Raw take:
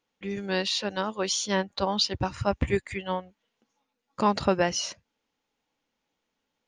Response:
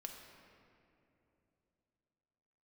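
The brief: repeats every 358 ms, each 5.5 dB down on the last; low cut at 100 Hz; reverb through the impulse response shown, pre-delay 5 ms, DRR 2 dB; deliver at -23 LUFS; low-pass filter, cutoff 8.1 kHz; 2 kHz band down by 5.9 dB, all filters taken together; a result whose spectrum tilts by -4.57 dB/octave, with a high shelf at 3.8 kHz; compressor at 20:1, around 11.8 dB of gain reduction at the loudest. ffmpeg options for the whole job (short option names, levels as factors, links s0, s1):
-filter_complex "[0:a]highpass=100,lowpass=8100,equalizer=f=2000:t=o:g=-5.5,highshelf=f=3800:g=-8,acompressor=threshold=0.0316:ratio=20,aecho=1:1:358|716|1074|1432|1790|2148|2506:0.531|0.281|0.149|0.079|0.0419|0.0222|0.0118,asplit=2[s0][s1];[1:a]atrim=start_sample=2205,adelay=5[s2];[s1][s2]afir=irnorm=-1:irlink=0,volume=1.19[s3];[s0][s3]amix=inputs=2:normalize=0,volume=3.16"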